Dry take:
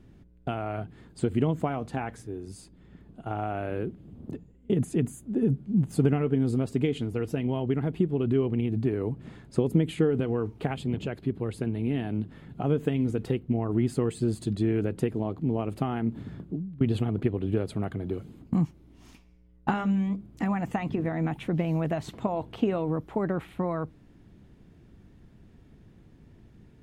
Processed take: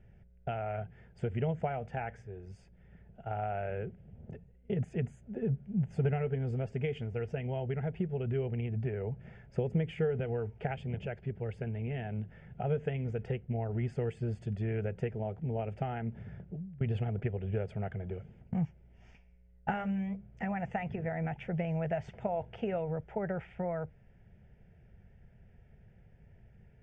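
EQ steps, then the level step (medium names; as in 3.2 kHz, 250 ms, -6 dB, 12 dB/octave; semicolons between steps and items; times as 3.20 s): low-pass 5 kHz 24 dB/octave; static phaser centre 1.1 kHz, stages 6; -2.0 dB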